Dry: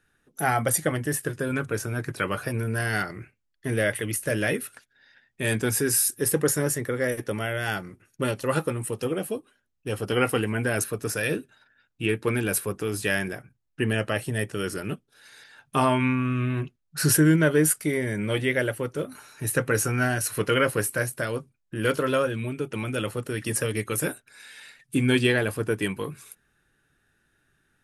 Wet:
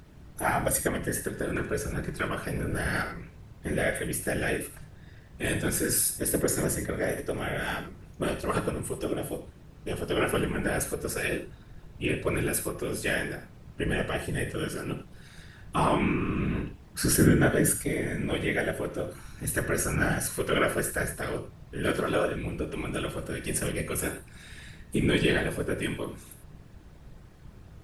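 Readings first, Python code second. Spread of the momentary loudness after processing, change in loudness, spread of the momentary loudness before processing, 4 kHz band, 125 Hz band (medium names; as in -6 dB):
14 LU, -3.0 dB, 12 LU, -3.0 dB, -4.0 dB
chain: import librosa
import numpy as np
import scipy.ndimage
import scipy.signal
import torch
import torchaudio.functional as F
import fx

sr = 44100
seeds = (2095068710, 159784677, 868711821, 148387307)

y = fx.dmg_noise_colour(x, sr, seeds[0], colour='brown', level_db=-43.0)
y = fx.whisperise(y, sr, seeds[1])
y = fx.rev_gated(y, sr, seeds[2], gate_ms=120, shape='flat', drr_db=6.5)
y = F.gain(torch.from_numpy(y), -4.0).numpy()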